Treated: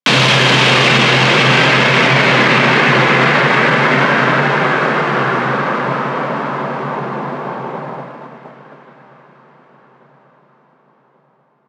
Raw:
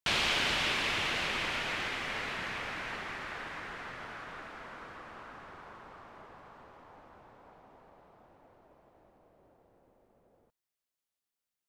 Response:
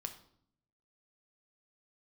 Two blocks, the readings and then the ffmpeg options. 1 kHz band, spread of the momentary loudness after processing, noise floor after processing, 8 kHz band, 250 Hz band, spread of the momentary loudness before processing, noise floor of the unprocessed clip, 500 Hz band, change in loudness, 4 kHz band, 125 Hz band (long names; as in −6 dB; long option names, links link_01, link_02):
+26.0 dB, 13 LU, −55 dBFS, +17.5 dB, +29.5 dB, 22 LU, below −85 dBFS, +28.5 dB, +22.0 dB, +20.0 dB, +32.5 dB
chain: -filter_complex "[0:a]agate=range=-31dB:threshold=-58dB:ratio=16:detection=peak,lowshelf=frequency=300:gain=8,flanger=delay=2.2:depth=1:regen=-70:speed=0.48:shape=triangular,aeval=exprs='(tanh(50.1*val(0)+0.55)-tanh(0.55))/50.1':channel_layout=same,afreqshift=130,highpass=110,lowpass=7900,highshelf=frequency=5100:gain=-8.5,aecho=1:1:1136|2272|3408|4544:0.0841|0.0446|0.0236|0.0125,asplit=2[link_01][link_02];[1:a]atrim=start_sample=2205,asetrate=38808,aresample=44100[link_03];[link_02][link_03]afir=irnorm=-1:irlink=0,volume=3dB[link_04];[link_01][link_04]amix=inputs=2:normalize=0,alimiter=level_in=33dB:limit=-1dB:release=50:level=0:latency=1,volume=-1dB"